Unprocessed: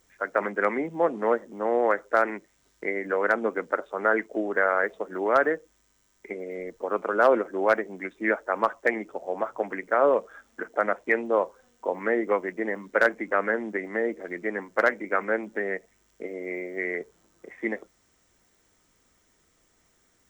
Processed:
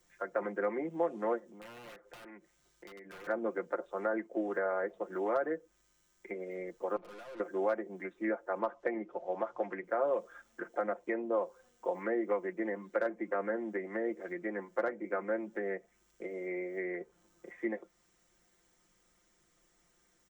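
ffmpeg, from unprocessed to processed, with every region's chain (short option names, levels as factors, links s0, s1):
-filter_complex "[0:a]asettb=1/sr,asplit=3[s0][s1][s2];[s0]atrim=end=1.394[s3];[s1]atrim=start=1.39:end=3.27,asetpts=PTS-STARTPTS,afade=t=in:d=0.004:c=qsin,afade=t=out:st=1.876:d=0.004:c=qsin,aeval=exprs='(mod(9.44*val(0)+1,2)-1)/9.44':c=same,acompressor=threshold=0.00355:ratio=2.5:attack=3.2:release=140:knee=1:detection=peak[s4];[s2]atrim=start=3.266[s5];[s3][s4]acrossfade=d=0.004:c1=hsin:c2=qsin[s6];[s6][s5]acrossfade=d=0.004:c1=qsin:c2=hsin,asettb=1/sr,asplit=3[s7][s8][s9];[s7]atrim=end=6.964[s10];[s8]atrim=start=6.96:end=7.4,asetpts=PTS-STARTPTS,afade=t=in:d=0.004:c=qsin,afade=t=out:st=0.436:d=0.004:c=qsin,lowpass=2800,acompressor=threshold=0.0562:ratio=2.5:attack=3.2:release=140:knee=1:detection=peak,aeval=exprs='(tanh(126*val(0)+0.75)-tanh(0.75))/126':c=same[s11];[s9]atrim=start=7.396[s12];[s10][s11]acrossfade=d=0.004:c1=hsin:c2=qsin[s13];[s13][s12]acrossfade=d=0.004:c1=qsin:c2=hsin,asettb=1/sr,asplit=3[s14][s15][s16];[s14]atrim=end=8.594[s17];[s15]atrim=start=8.59:end=9.84,asetpts=PTS-STARTPTS,afade=t=in:d=0.004:c=qsin,afade=t=out:st=1.246:d=0.004:c=qsin,lowpass=4700,acompressor=mode=upward:threshold=0.00794:ratio=2.5:attack=3.2:release=140:knee=2.83:detection=peak[s18];[s16]atrim=start=9.836[s19];[s17][s18]acrossfade=d=0.004:c1=hsin:c2=qsin[s20];[s20][s19]acrossfade=d=0.004:c1=qsin:c2=hsin,aecho=1:1:5.7:0.65,acrossover=split=170|860|2800[s21][s22][s23][s24];[s21]acompressor=threshold=0.00112:ratio=4[s25];[s22]acompressor=threshold=0.0794:ratio=4[s26];[s23]acompressor=threshold=0.0141:ratio=4[s27];[s24]acompressor=threshold=0.00126:ratio=4[s28];[s25][s26][s27][s28]amix=inputs=4:normalize=0,volume=0.473"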